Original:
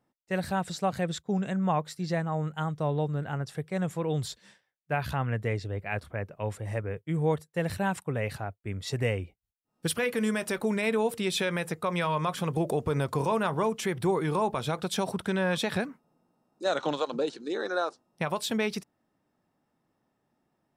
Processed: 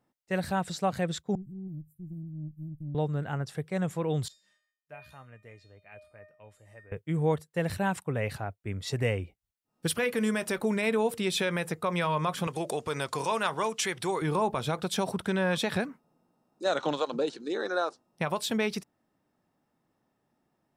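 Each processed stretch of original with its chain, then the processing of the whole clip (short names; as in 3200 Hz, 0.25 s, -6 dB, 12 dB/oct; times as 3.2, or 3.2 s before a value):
1.35–2.95 inverse Chebyshev band-stop 570–4500 Hz, stop band 70 dB + bell 720 Hz +13.5 dB 2.2 oct + tube stage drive 30 dB, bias 0.7
4.28–6.92 low shelf 360 Hz -4 dB + resonator 610 Hz, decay 0.46 s, mix 90% + mismatched tape noise reduction encoder only
12.47–14.22 LPF 7400 Hz + tilt +3.5 dB/oct
whole clip: dry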